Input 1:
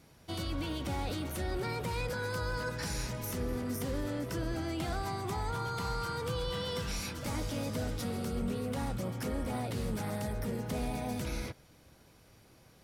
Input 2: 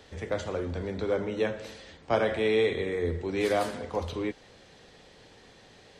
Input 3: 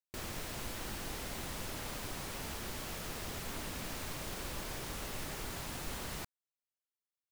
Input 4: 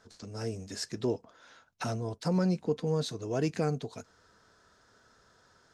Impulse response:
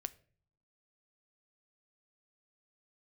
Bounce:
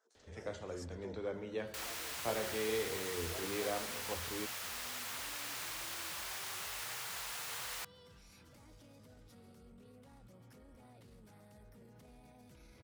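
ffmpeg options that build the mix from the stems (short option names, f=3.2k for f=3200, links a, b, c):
-filter_complex "[0:a]alimiter=level_in=10.5dB:limit=-24dB:level=0:latency=1:release=49,volume=-10.5dB,adelay=1300,volume=-17dB[a];[1:a]adelay=150,volume=-12dB[b];[2:a]highpass=1k,adelay=1600,volume=2dB[c];[3:a]highpass=f=380:w=0.5412,highpass=f=380:w=1.3066,highshelf=f=2.6k:g=-8.5,aexciter=amount=2.6:drive=6:freq=6k,volume=-15dB[d];[a][b][c][d]amix=inputs=4:normalize=0"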